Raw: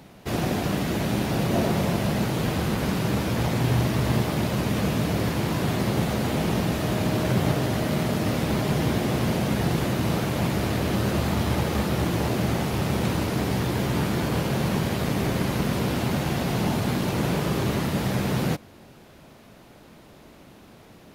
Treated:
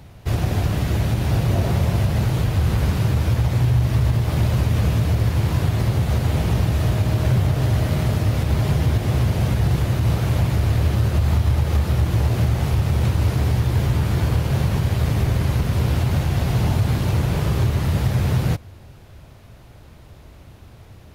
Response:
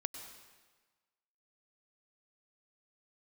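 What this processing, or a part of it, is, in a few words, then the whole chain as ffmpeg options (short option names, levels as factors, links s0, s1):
car stereo with a boomy subwoofer: -af "lowshelf=f=140:t=q:w=1.5:g=12.5,alimiter=limit=0.316:level=0:latency=1:release=123"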